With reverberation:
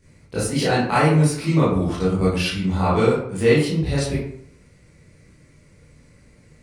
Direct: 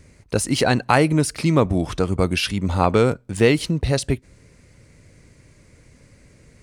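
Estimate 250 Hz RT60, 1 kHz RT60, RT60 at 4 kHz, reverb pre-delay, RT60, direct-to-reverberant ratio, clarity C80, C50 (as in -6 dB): 0.70 s, 0.65 s, 0.40 s, 19 ms, 0.65 s, -10.5 dB, 6.0 dB, 1.0 dB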